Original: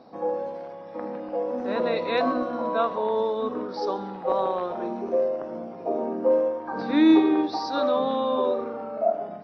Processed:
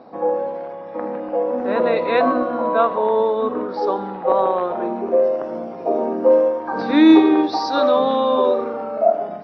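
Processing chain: tone controls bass -4 dB, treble -15 dB, from 5.23 s treble -1 dB; gain +7.5 dB

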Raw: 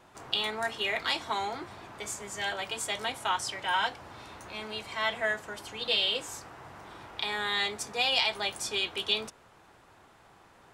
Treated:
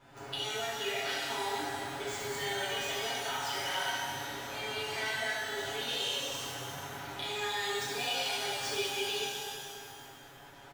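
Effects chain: median filter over 5 samples; notch 1100 Hz, Q 8.1; comb 7.2 ms, depth 90%; compressor, threshold -34 dBFS, peak gain reduction 13.5 dB; shimmer reverb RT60 2.1 s, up +12 st, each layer -8 dB, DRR -8 dB; gain -6 dB

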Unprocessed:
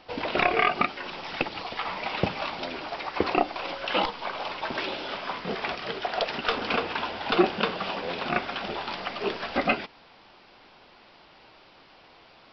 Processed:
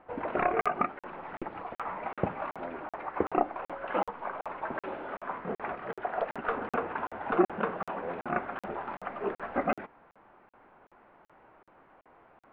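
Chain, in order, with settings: LPF 1700 Hz 24 dB/oct; low shelf 190 Hz -3.5 dB; crackling interface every 0.38 s, samples 2048, zero, from 0.61; gain -2.5 dB

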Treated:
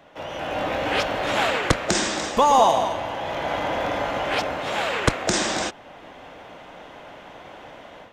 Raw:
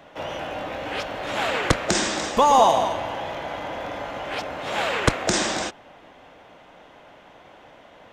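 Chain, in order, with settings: AGC gain up to 10 dB; gain -3.5 dB

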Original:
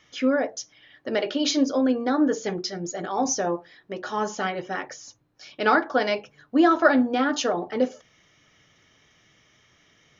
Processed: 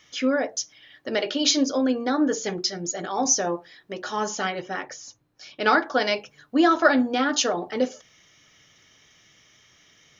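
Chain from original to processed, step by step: high shelf 3000 Hz +9 dB, from 4.61 s +3.5 dB, from 5.66 s +10 dB; gain -1 dB

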